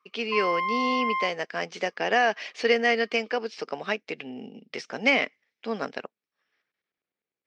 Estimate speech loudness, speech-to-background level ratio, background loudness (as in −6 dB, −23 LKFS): −27.0 LKFS, 1.5 dB, −28.5 LKFS